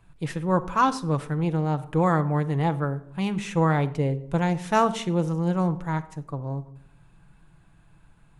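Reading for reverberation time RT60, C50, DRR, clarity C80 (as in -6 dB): 0.70 s, 16.0 dB, 8.0 dB, 19.5 dB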